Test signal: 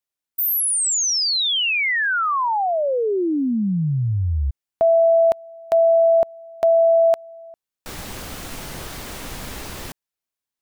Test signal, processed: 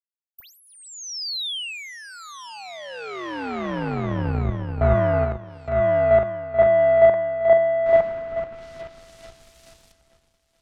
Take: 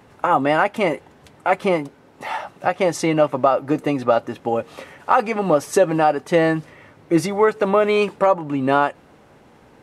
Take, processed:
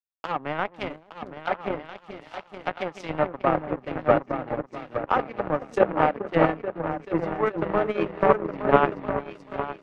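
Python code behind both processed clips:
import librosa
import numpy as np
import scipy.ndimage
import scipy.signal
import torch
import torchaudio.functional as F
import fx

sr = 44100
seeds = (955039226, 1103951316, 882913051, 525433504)

p1 = fx.high_shelf(x, sr, hz=2300.0, db=2.5)
p2 = p1 + fx.echo_opening(p1, sr, ms=433, hz=400, octaves=2, feedback_pct=70, wet_db=0, dry=0)
p3 = fx.power_curve(p2, sr, exponent=2.0)
p4 = 10.0 ** (-13.5 / 20.0) * np.tanh(p3 / 10.0 ** (-13.5 / 20.0))
p5 = p3 + (p4 * librosa.db_to_amplitude(-9.0))
p6 = fx.env_lowpass_down(p5, sr, base_hz=1900.0, full_db=-20.0)
p7 = fx.band_widen(p6, sr, depth_pct=70)
y = p7 * librosa.db_to_amplitude(-3.0)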